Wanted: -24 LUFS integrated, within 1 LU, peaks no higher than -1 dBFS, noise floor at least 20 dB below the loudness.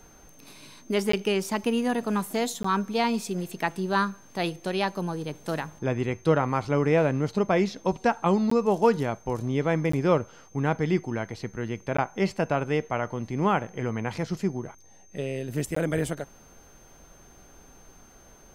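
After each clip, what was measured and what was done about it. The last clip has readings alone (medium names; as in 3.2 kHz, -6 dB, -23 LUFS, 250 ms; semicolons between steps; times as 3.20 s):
dropouts 6; longest dropout 14 ms; steady tone 6.3 kHz; tone level -56 dBFS; loudness -27.0 LUFS; peak level -9.0 dBFS; loudness target -24.0 LUFS
-> interpolate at 1.12/2.63/8.50/9.92/11.97/15.75 s, 14 ms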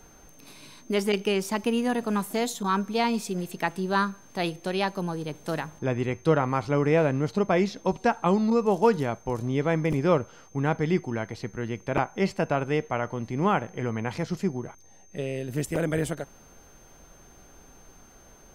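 dropouts 0; steady tone 6.3 kHz; tone level -56 dBFS
-> band-stop 6.3 kHz, Q 30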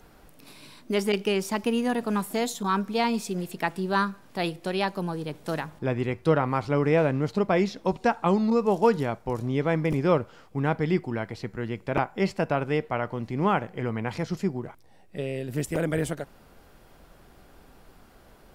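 steady tone not found; loudness -27.0 LUFS; peak level -9.0 dBFS; loudness target -24.0 LUFS
-> trim +3 dB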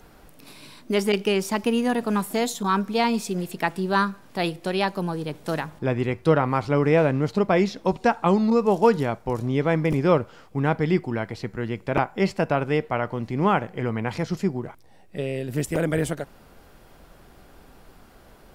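loudness -24.0 LUFS; peak level -6.0 dBFS; noise floor -51 dBFS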